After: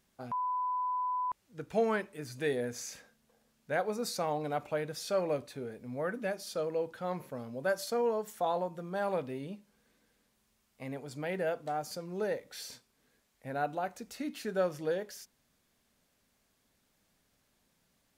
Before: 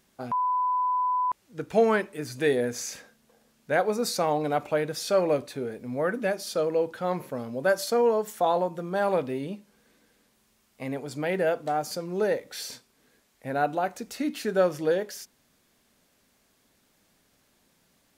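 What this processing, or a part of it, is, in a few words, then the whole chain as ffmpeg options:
low shelf boost with a cut just above: -af "lowshelf=f=110:g=5,equalizer=f=330:t=o:w=0.77:g=-2.5,volume=-7.5dB"

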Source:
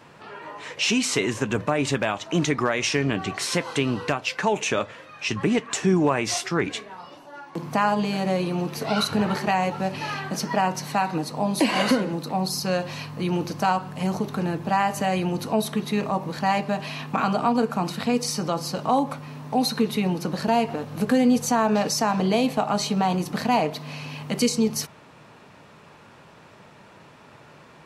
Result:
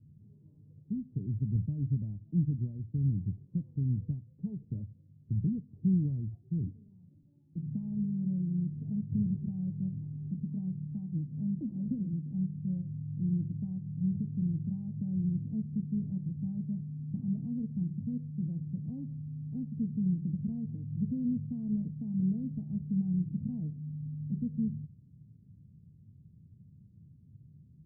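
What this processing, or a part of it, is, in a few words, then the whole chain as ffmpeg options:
the neighbour's flat through the wall: -af "lowpass=f=180:w=0.5412,lowpass=f=180:w=1.3066,equalizer=f=92:t=o:w=0.84:g=7,volume=-1.5dB"

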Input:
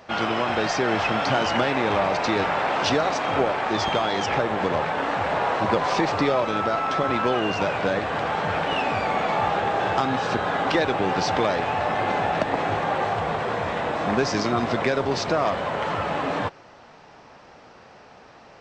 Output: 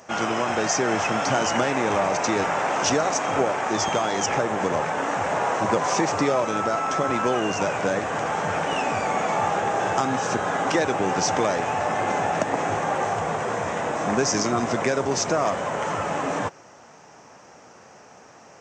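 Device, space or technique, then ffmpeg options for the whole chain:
budget condenser microphone: -af "highpass=96,highshelf=f=5.2k:t=q:w=3:g=7.5"

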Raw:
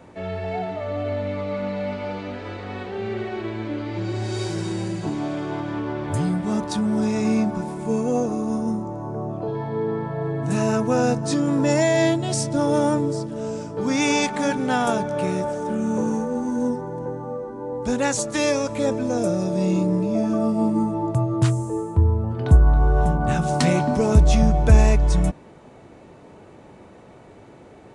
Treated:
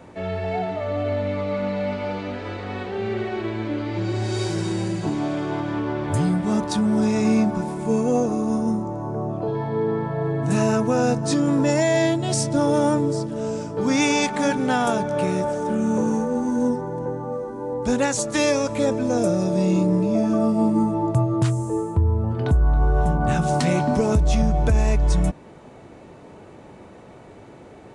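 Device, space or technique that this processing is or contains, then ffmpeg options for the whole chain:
soft clipper into limiter: -filter_complex "[0:a]asoftclip=type=tanh:threshold=-3dB,alimiter=limit=-12.5dB:level=0:latency=1:release=285,asettb=1/sr,asplit=3[a][b][c];[a]atrim=end=17.324[d];[b]atrim=start=17.32:end=17.74,asetpts=PTS-STARTPTS,afade=t=in:d=0.004:c=qsin,afade=t=out:st=0.416:d=0.004:c=qsin,aemphasis=mode=production:type=cd[e];[c]atrim=start=17.736[f];[d][e]acrossfade=d=0.004:c1=hsin:c2=qsin[g];[g][f]acrossfade=d=0.004:c1=qsin:c2=hsin,volume=2dB"

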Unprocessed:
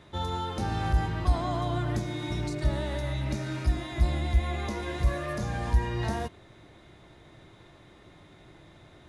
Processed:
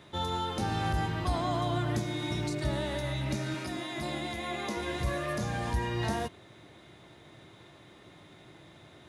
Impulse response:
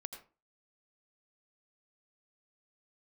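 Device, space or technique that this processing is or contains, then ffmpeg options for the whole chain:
presence and air boost: -filter_complex "[0:a]highpass=98,equalizer=f=3.1k:t=o:w=0.77:g=2.5,highshelf=f=9.5k:g=6,asettb=1/sr,asplit=3[a][b][c];[a]atrim=end=3.544[d];[b]atrim=start=3.54:end=4.77,asetpts=PTS-STARTPTS,afade=t=in:d=0.004:c=qsin,afade=t=out:st=1.226:d=0.004:c=qsin,highpass=180[e];[c]atrim=start=4.766[f];[d][e]acrossfade=d=0.004:c1=hsin:c2=qsin[g];[g][f]acrossfade=d=0.004:c1=qsin:c2=hsin"

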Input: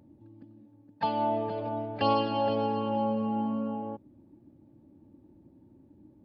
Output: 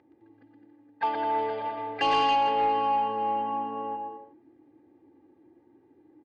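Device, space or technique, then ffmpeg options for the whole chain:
intercom: -filter_complex "[0:a]highpass=420,lowpass=3.5k,lowshelf=f=150:g=11.5,equalizer=f=1.9k:t=o:w=0.53:g=9,aecho=1:1:2.5:0.71,aecho=1:1:120|210|277.5|328.1|366.1:0.631|0.398|0.251|0.158|0.1,asoftclip=type=tanh:threshold=-17.5dB,asplit=3[a][b][c];[a]afade=t=out:st=1.38:d=0.02[d];[b]adynamicequalizer=threshold=0.01:dfrequency=2300:dqfactor=0.7:tfrequency=2300:tqfactor=0.7:attack=5:release=100:ratio=0.375:range=3.5:mode=boostabove:tftype=highshelf,afade=t=in:st=1.38:d=0.02,afade=t=out:st=2.36:d=0.02[e];[c]afade=t=in:st=2.36:d=0.02[f];[d][e][f]amix=inputs=3:normalize=0"

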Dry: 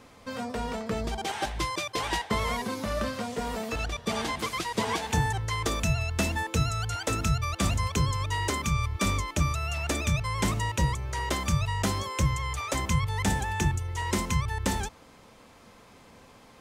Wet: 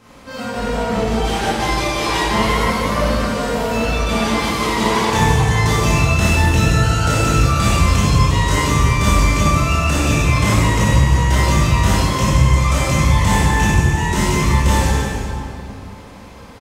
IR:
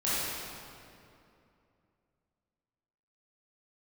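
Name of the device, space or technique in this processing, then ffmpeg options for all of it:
cave: -filter_complex "[0:a]aecho=1:1:291:0.251[a];[1:a]atrim=start_sample=2205[b];[a][b]afir=irnorm=-1:irlink=0,volume=2dB"

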